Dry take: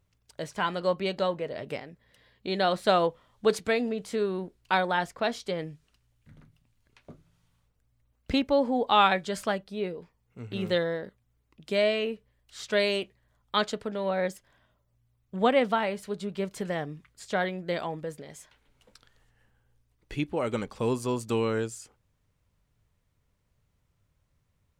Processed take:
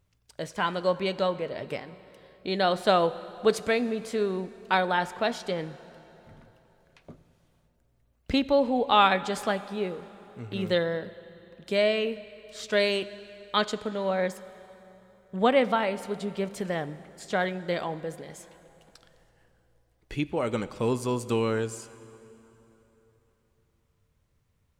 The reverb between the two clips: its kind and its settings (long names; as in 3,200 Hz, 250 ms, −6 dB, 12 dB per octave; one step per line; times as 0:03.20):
dense smooth reverb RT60 3.5 s, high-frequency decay 0.8×, DRR 15 dB
level +1 dB